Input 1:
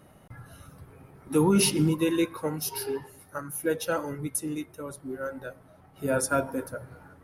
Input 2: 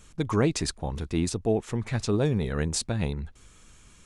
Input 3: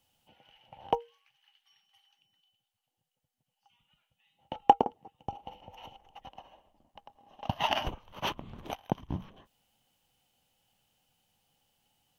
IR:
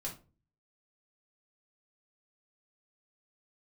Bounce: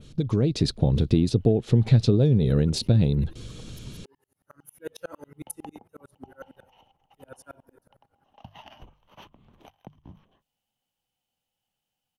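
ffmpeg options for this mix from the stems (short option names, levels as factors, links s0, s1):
-filter_complex "[0:a]aeval=exprs='val(0)*pow(10,-38*if(lt(mod(-11*n/s,1),2*abs(-11)/1000),1-mod(-11*n/s,1)/(2*abs(-11)/1000),(mod(-11*n/s,1)-2*abs(-11)/1000)/(1-2*abs(-11)/1000))/20)':c=same,adelay=1150,volume=0.299,afade=t=in:st=4.33:d=0.59:silence=0.251189,afade=t=out:st=6.37:d=0.49:silence=0.316228[s0];[1:a]acompressor=threshold=0.02:ratio=10,equalizer=f=125:t=o:w=1:g=12,equalizer=f=250:t=o:w=1:g=5,equalizer=f=500:t=o:w=1:g=7,equalizer=f=1000:t=o:w=1:g=-8,equalizer=f=2000:t=o:w=1:g=-6,equalizer=f=4000:t=o:w=1:g=10,equalizer=f=8000:t=o:w=1:g=-9,volume=1.19[s1];[2:a]bandreject=f=50:t=h:w=6,bandreject=f=100:t=h:w=6,bandreject=f=150:t=h:w=6,acrossover=split=210[s2][s3];[s3]acompressor=threshold=0.0126:ratio=2.5[s4];[s2][s4]amix=inputs=2:normalize=0,adelay=950,volume=0.119[s5];[s0][s1][s5]amix=inputs=3:normalize=0,adynamicequalizer=threshold=0.00126:dfrequency=6300:dqfactor=0.99:tfrequency=6300:tqfactor=0.99:attack=5:release=100:ratio=0.375:range=2:mode=cutabove:tftype=bell,dynaudnorm=f=150:g=5:m=2.51"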